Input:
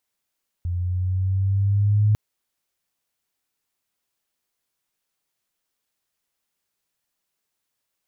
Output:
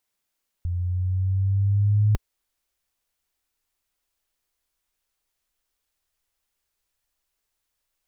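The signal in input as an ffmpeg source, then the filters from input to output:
-f lavfi -i "aevalsrc='pow(10,(-14+8.5*(t/1.5-1))/20)*sin(2*PI*87.1*1.5/(3.5*log(2)/12)*(exp(3.5*log(2)/12*t/1.5)-1))':d=1.5:s=44100"
-af "asubboost=boost=9.5:cutoff=52"

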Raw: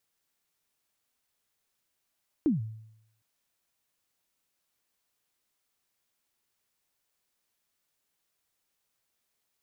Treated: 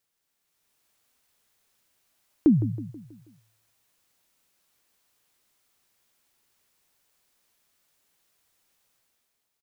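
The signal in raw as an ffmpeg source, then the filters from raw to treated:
-f lavfi -i "aevalsrc='0.112*pow(10,-3*t/0.78)*sin(2*PI*(340*0.145/log(110/340)*(exp(log(110/340)*min(t,0.145)/0.145)-1)+110*max(t-0.145,0)))':d=0.76:s=44100"
-filter_complex "[0:a]dynaudnorm=f=130:g=9:m=2.66,asplit=2[s0][s1];[s1]adelay=161,lowpass=f=2000:p=1,volume=0.224,asplit=2[s2][s3];[s3]adelay=161,lowpass=f=2000:p=1,volume=0.48,asplit=2[s4][s5];[s5]adelay=161,lowpass=f=2000:p=1,volume=0.48,asplit=2[s6][s7];[s7]adelay=161,lowpass=f=2000:p=1,volume=0.48,asplit=2[s8][s9];[s9]adelay=161,lowpass=f=2000:p=1,volume=0.48[s10];[s0][s2][s4][s6][s8][s10]amix=inputs=6:normalize=0"

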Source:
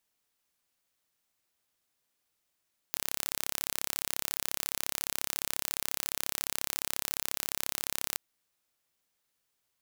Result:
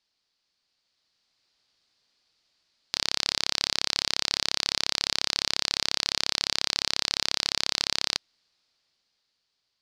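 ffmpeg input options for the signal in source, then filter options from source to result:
-f lavfi -i "aevalsrc='0.596*eq(mod(n,1286),0)':d=5.23:s=44100"
-af "lowpass=f=4600:t=q:w=4.1,dynaudnorm=f=210:g=11:m=2.11"

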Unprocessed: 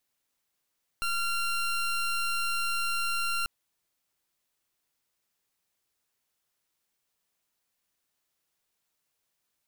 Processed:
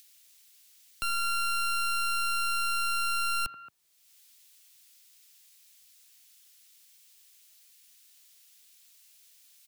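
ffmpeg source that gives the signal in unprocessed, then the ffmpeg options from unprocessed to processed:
-f lavfi -i "aevalsrc='0.0355*(2*lt(mod(1380*t,1),0.21)-1)':d=2.44:s=44100"
-filter_complex "[0:a]acrossover=split=110|2300[s0][s1][s2];[s1]aecho=1:1:81|224:0.316|0.237[s3];[s2]acompressor=mode=upward:threshold=0.00891:ratio=2.5[s4];[s0][s3][s4]amix=inputs=3:normalize=0"

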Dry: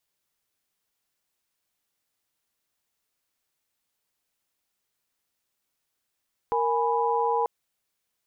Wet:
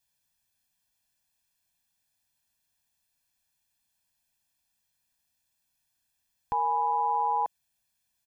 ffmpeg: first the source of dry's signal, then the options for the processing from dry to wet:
-f lavfi -i "aevalsrc='0.0501*(sin(2*PI*466.16*t)+sin(2*PI*830.61*t)+sin(2*PI*987.77*t))':d=0.94:s=44100"
-af "equalizer=f=780:w=0.39:g=-5,aecho=1:1:1.2:0.79"

